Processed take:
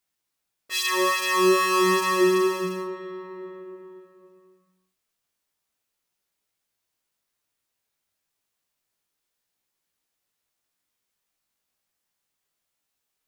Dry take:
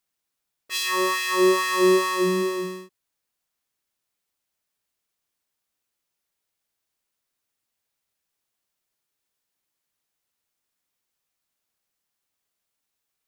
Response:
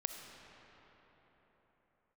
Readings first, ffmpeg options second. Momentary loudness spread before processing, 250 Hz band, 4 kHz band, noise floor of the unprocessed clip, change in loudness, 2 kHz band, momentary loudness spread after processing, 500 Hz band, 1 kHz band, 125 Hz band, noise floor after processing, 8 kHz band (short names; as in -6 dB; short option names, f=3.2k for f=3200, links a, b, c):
12 LU, -0.5 dB, +0.5 dB, -82 dBFS, 0.0 dB, +0.5 dB, 19 LU, -0.5 dB, +2.0 dB, -1.0 dB, -81 dBFS, +0.5 dB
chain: -filter_complex "[0:a]flanger=delay=16.5:depth=4.4:speed=0.31,asplit=2[a][b];[1:a]atrim=start_sample=2205[c];[b][c]afir=irnorm=-1:irlink=0,volume=1.5dB[d];[a][d]amix=inputs=2:normalize=0,volume=-2.5dB"